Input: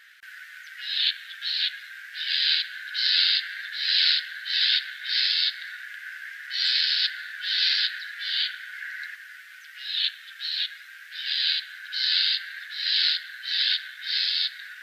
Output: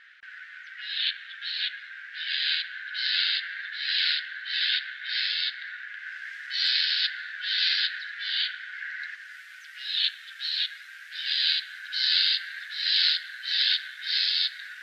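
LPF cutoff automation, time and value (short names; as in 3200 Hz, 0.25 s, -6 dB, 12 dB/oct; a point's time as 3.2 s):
5.92 s 3300 Hz
6.37 s 7900 Hz
6.85 s 4500 Hz
8.99 s 4500 Hz
9.4 s 11000 Hz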